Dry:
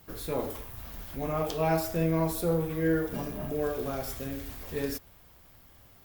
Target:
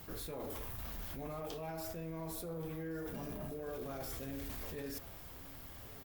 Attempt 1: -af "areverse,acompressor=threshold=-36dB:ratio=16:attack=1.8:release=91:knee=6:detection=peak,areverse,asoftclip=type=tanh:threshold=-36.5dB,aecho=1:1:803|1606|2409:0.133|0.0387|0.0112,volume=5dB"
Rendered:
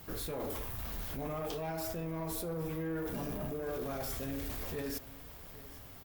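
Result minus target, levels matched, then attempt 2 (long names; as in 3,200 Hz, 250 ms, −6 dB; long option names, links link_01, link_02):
downward compressor: peak gain reduction −6.5 dB; echo 326 ms early
-af "areverse,acompressor=threshold=-43dB:ratio=16:attack=1.8:release=91:knee=6:detection=peak,areverse,asoftclip=type=tanh:threshold=-36.5dB,aecho=1:1:1129|2258|3387:0.133|0.0387|0.0112,volume=5dB"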